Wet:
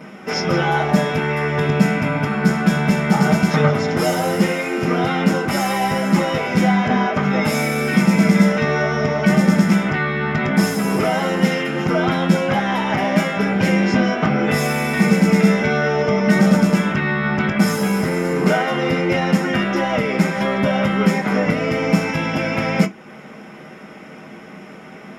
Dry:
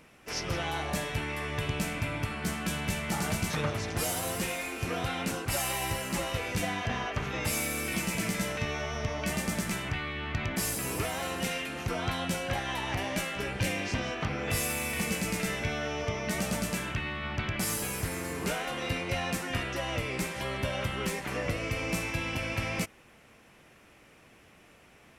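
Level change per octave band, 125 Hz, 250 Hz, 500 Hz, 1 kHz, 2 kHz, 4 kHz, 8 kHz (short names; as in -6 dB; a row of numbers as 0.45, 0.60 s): +14.5, +19.5, +16.0, +14.5, +12.5, +7.5, +2.0 dB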